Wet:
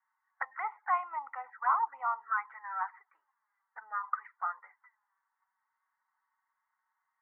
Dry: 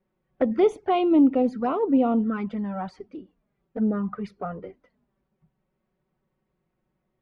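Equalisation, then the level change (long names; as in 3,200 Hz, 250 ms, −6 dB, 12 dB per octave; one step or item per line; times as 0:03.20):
Chebyshev band-pass filter 860–2,000 Hz, order 4
+6.0 dB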